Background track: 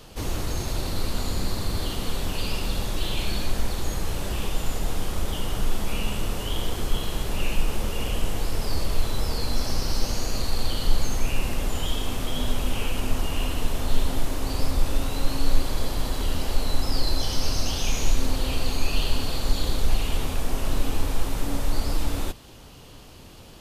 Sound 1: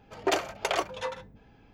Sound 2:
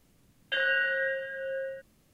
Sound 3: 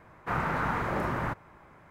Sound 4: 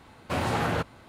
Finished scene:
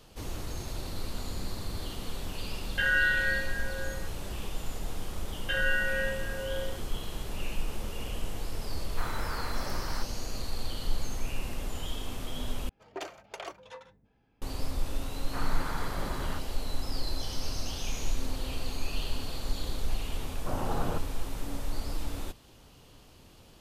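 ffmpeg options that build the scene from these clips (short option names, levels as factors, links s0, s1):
-filter_complex "[2:a]asplit=2[s0][s1];[3:a]asplit=2[s2][s3];[0:a]volume=0.355[s4];[s0]equalizer=f=1700:w=0.6:g=14.5[s5];[s2]aemphasis=mode=production:type=bsi[s6];[s3]aeval=exprs='sgn(val(0))*max(abs(val(0))-0.00106,0)':c=same[s7];[4:a]lowpass=f=1300:w=0.5412,lowpass=f=1300:w=1.3066[s8];[s4]asplit=2[s9][s10];[s9]atrim=end=12.694[s11];[1:a]atrim=end=1.73,asetpts=PTS-STARTPTS,volume=0.224[s12];[s10]atrim=start=14.416[s13];[s5]atrim=end=2.13,asetpts=PTS-STARTPTS,volume=0.251,afade=t=in:d=0.004:c=hsin,afade=t=out:st=2.126:d=0.004:c=hsin,adelay=2260[s14];[s1]atrim=end=2.13,asetpts=PTS-STARTPTS,volume=0.794,afade=t=in:d=0.004:c=hsin,afade=t=out:st=2.126:d=0.004:c=hsin,adelay=219177S[s15];[s6]atrim=end=1.9,asetpts=PTS-STARTPTS,volume=0.376,afade=t=in:d=0.004:c=hsin,afade=t=out:st=1.896:d=0.004:c=hsin,adelay=8700[s16];[s7]atrim=end=1.9,asetpts=PTS-STARTPTS,volume=0.398,afade=t=in:d=0.004:c=hsin,afade=t=out:st=1.896:d=0.004:c=hsin,adelay=15060[s17];[s8]atrim=end=1.08,asetpts=PTS-STARTPTS,volume=0.501,afade=t=in:d=0.004:c=hsin,afade=t=out:st=1.076:d=0.004:c=hsin,adelay=20160[s18];[s11][s12]acrossfade=d=0.004:c1=hsin:c2=hsin[s19];[s19][s13]acrossfade=d=0.004:c1=hsin:c2=hsin[s20];[s20][s14][s15][s16][s17][s18]amix=inputs=6:normalize=0"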